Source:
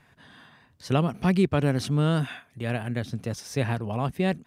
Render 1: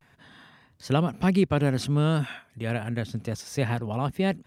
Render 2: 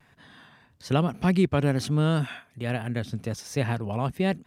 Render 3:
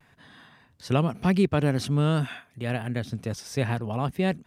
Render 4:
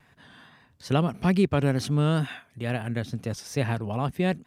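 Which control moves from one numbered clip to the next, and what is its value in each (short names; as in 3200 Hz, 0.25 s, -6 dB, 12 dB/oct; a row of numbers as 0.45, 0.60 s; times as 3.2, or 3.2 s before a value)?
vibrato, rate: 0.3, 1.2, 0.82, 2.3 Hz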